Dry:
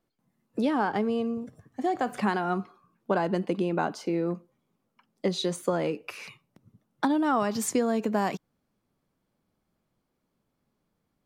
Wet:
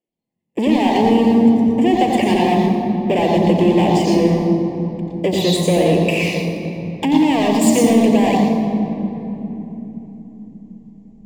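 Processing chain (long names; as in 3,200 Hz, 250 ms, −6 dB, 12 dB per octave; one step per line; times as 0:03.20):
in parallel at 0 dB: downward compressor, threshold −33 dBFS, peak gain reduction 12.5 dB
on the sum: leveller curve on the samples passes 5
Butterworth band-reject 1,400 Hz, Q 1.4
convolution reverb RT60 3.5 s, pre-delay 87 ms, DRR 1 dB
level −11.5 dB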